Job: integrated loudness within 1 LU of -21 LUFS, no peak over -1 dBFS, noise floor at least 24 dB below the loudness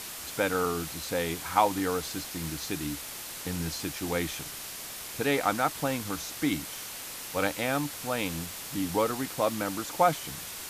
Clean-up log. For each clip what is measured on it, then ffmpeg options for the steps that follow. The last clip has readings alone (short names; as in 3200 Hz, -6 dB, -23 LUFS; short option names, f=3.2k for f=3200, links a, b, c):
noise floor -40 dBFS; noise floor target -55 dBFS; loudness -30.5 LUFS; peak -9.0 dBFS; loudness target -21.0 LUFS
-> -af "afftdn=nr=15:nf=-40"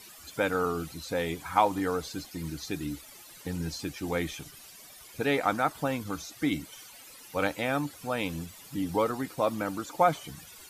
noise floor -50 dBFS; noise floor target -55 dBFS
-> -af "afftdn=nr=6:nf=-50"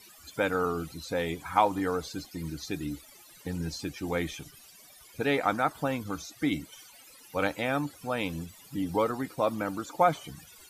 noise floor -54 dBFS; noise floor target -55 dBFS
-> -af "afftdn=nr=6:nf=-54"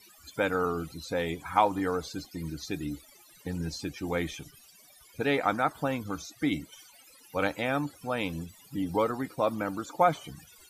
noise floor -57 dBFS; loudness -31.0 LUFS; peak -9.0 dBFS; loudness target -21.0 LUFS
-> -af "volume=10dB,alimiter=limit=-1dB:level=0:latency=1"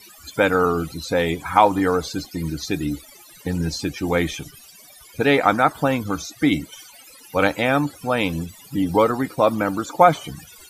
loudness -21.0 LUFS; peak -1.0 dBFS; noise floor -47 dBFS